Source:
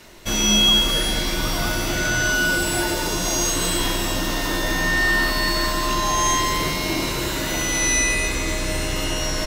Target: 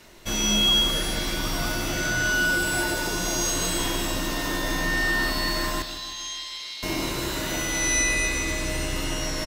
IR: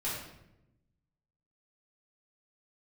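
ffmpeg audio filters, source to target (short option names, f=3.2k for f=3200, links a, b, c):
-filter_complex "[0:a]asettb=1/sr,asplit=3[a][b][c];[a]atrim=end=5.824[d];[b]atrim=start=5.82:end=6.83,asetpts=PTS-STARTPTS,afade=t=in:d=0.004:c=qsin,afade=t=out:st=1.006:d=0.004:c=qsin,bandpass=f=3.9k:t=q:w=2.5:csg=0[e];[c]atrim=start=6.826[f];[d][e]acrossfade=d=0.004:c1=hsin:c2=qsin[g];[g][f]acrossfade=d=0.004:c1=qsin:c2=hsin,aecho=1:1:154|308|462|616|770|924:0.282|0.152|0.0822|0.0444|0.024|0.0129,volume=-4.5dB"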